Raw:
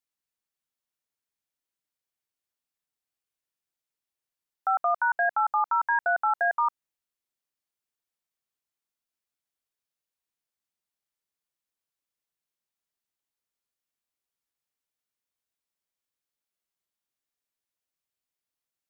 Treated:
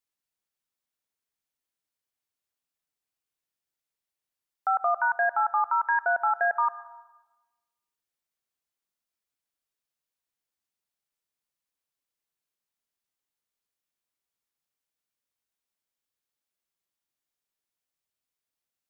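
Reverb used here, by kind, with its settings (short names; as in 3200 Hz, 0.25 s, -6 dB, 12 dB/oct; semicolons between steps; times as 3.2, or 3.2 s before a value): plate-style reverb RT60 1.1 s, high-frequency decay 0.75×, pre-delay 95 ms, DRR 16 dB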